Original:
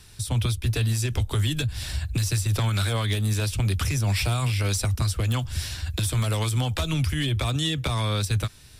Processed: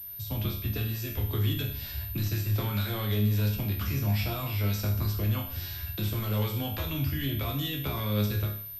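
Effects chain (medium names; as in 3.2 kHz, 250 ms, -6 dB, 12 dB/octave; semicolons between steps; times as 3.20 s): chord resonator C#2 major, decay 0.6 s; dynamic bell 250 Hz, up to +6 dB, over -52 dBFS, Q 0.83; class-D stage that switches slowly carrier 13 kHz; trim +8 dB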